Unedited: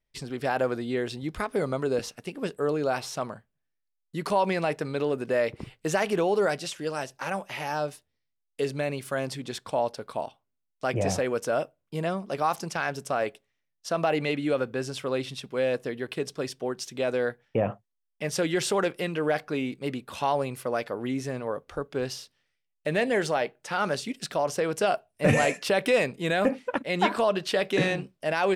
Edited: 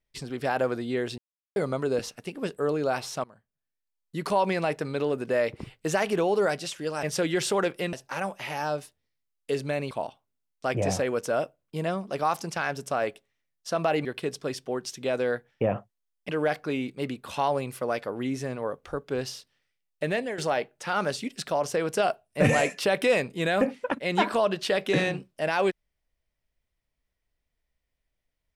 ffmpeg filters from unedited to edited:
ffmpeg -i in.wav -filter_complex "[0:a]asplit=10[link_01][link_02][link_03][link_04][link_05][link_06][link_07][link_08][link_09][link_10];[link_01]atrim=end=1.18,asetpts=PTS-STARTPTS,afade=type=out:start_time=1.176:duration=0.004:curve=hsin[link_11];[link_02]atrim=start=1.18:end=1.56,asetpts=PTS-STARTPTS,volume=0[link_12];[link_03]atrim=start=1.56:end=3.24,asetpts=PTS-STARTPTS,afade=type=in:duration=0.004:curve=hsin,afade=type=out:start_time=1.676:duration=0.004:curve=hsin:silence=0.1[link_13];[link_04]atrim=start=3.24:end=7.032,asetpts=PTS-STARTPTS,afade=type=in:duration=0.93:silence=0.1[link_14];[link_05]atrim=start=18.228:end=19.132[link_15];[link_06]atrim=start=7.028:end=9.012[link_16];[link_07]atrim=start=10.098:end=14.242[link_17];[link_08]atrim=start=15.988:end=18.232[link_18];[link_09]atrim=start=19.128:end=23.22,asetpts=PTS-STARTPTS,afade=type=out:start_time=3.752:duration=0.34:silence=0.237137[link_19];[link_10]atrim=start=23.22,asetpts=PTS-STARTPTS,afade=type=in:duration=0.004:curve=hsin:silence=0.237137[link_20];[link_11][link_12][link_13][link_14]concat=n=4:v=0:a=1[link_21];[link_21][link_15]acrossfade=duration=0.004:curve1=hsin:curve2=hsin[link_22];[link_22][link_16]acrossfade=duration=0.004:curve1=hsin:curve2=hsin[link_23];[link_23][link_17]acrossfade=duration=0.004:curve1=hsin:curve2=hsin[link_24];[link_24][link_18]acrossfade=duration=0.004:curve1=hsin:curve2=hsin[link_25];[link_19][link_20]concat=n=2:v=0:a=1[link_26];[link_25][link_26]acrossfade=duration=0.004:curve1=hsin:curve2=hsin" out.wav

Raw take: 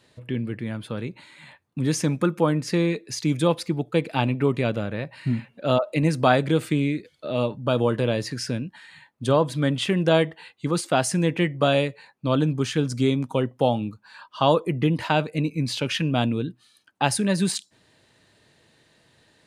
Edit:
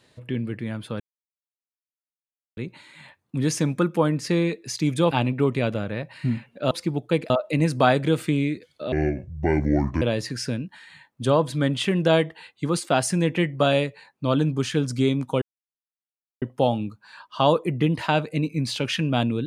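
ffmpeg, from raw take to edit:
ffmpeg -i in.wav -filter_complex "[0:a]asplit=8[link_01][link_02][link_03][link_04][link_05][link_06][link_07][link_08];[link_01]atrim=end=1,asetpts=PTS-STARTPTS,afade=type=out:start_time=0.996:duration=0.004:curve=hsin,apad=pad_dur=1.57[link_09];[link_02]atrim=start=1:end=3.542,asetpts=PTS-STARTPTS,afade=type=in:duration=0.004:curve=hsin[link_10];[link_03]atrim=start=4.128:end=5.732[link_11];[link_04]atrim=start=3.538:end=4.132[link_12];[link_05]atrim=start=5.728:end=7.354[link_13];[link_06]atrim=start=7.35:end=8.03,asetpts=PTS-STARTPTS,asetrate=27342,aresample=44100[link_14];[link_07]atrim=start=8.026:end=13.43,asetpts=PTS-STARTPTS,afade=type=out:start_time=5.4:duration=0.004:curve=hsin,apad=pad_dur=1[link_15];[link_08]atrim=start=13.43,asetpts=PTS-STARTPTS,afade=type=in:duration=0.004:curve=hsin[link_16];[link_09][link_10]concat=n=2:v=0:a=1[link_17];[link_17][link_11]acrossfade=duration=0.004:curve1=hsin:curve2=hsin[link_18];[link_18][link_12]acrossfade=duration=0.004:curve1=hsin:curve2=hsin[link_19];[link_19][link_13]acrossfade=duration=0.004:curve1=hsin:curve2=hsin[link_20];[link_20][link_14]acrossfade=duration=0.004:curve1=hsin:curve2=hsin[link_21];[link_15][link_16]concat=n=2:v=0:a=1[link_22];[link_21][link_22]acrossfade=duration=0.004:curve1=hsin:curve2=hsin" out.wav

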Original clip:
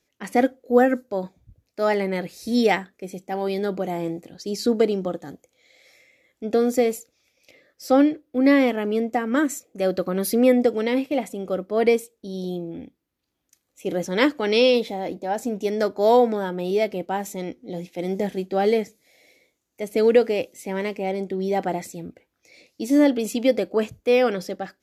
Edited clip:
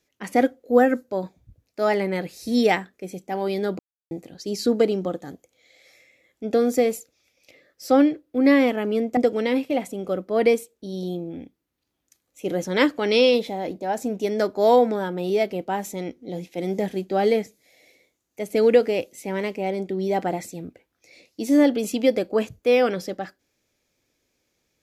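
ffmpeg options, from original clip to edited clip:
ffmpeg -i in.wav -filter_complex "[0:a]asplit=4[link_01][link_02][link_03][link_04];[link_01]atrim=end=3.79,asetpts=PTS-STARTPTS,afade=type=out:start_time=3.786:duration=0.004:curve=hsin[link_05];[link_02]atrim=start=3.79:end=4.11,asetpts=PTS-STARTPTS,volume=0[link_06];[link_03]atrim=start=4.11:end=9.172,asetpts=PTS-STARTPTS,afade=type=in:duration=0.004:curve=hsin[link_07];[link_04]atrim=start=10.578[link_08];[link_05][link_06][link_07]concat=n=3:v=0:a=1[link_09];[link_09][link_08]acrossfade=duration=0.004:curve1=hsin:curve2=hsin" out.wav

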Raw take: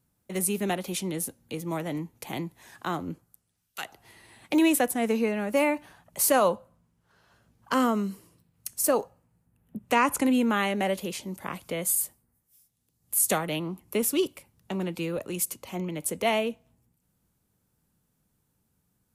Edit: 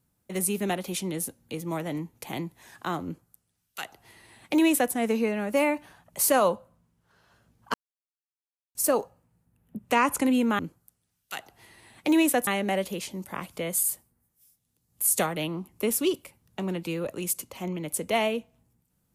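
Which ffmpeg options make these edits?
ffmpeg -i in.wav -filter_complex "[0:a]asplit=5[link_01][link_02][link_03][link_04][link_05];[link_01]atrim=end=7.74,asetpts=PTS-STARTPTS,afade=type=out:start_time=7.736:duration=0.004:curve=hsin[link_06];[link_02]atrim=start=7.74:end=8.75,asetpts=PTS-STARTPTS,volume=0[link_07];[link_03]atrim=start=8.75:end=10.592,asetpts=PTS-STARTPTS,afade=type=in:duration=0.004:curve=hsin[link_08];[link_04]atrim=start=3.048:end=4.932[link_09];[link_05]atrim=start=10.588[link_10];[link_06][link_07][link_08]concat=n=3:v=0:a=1[link_11];[link_11][link_09]acrossfade=duration=0.004:curve1=hsin:curve2=hsin[link_12];[link_12][link_10]acrossfade=duration=0.004:curve1=hsin:curve2=hsin" out.wav

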